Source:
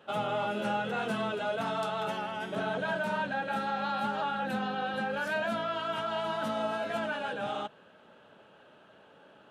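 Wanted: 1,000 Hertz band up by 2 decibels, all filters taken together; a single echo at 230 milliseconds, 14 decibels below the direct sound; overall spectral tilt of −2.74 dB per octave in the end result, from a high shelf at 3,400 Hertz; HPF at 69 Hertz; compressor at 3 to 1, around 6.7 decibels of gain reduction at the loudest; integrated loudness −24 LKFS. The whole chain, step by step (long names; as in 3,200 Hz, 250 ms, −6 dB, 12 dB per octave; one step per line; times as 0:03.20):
high-pass filter 69 Hz
parametric band 1,000 Hz +3 dB
high-shelf EQ 3,400 Hz −3.5 dB
downward compressor 3 to 1, threshold −36 dBFS
single-tap delay 230 ms −14 dB
level +13.5 dB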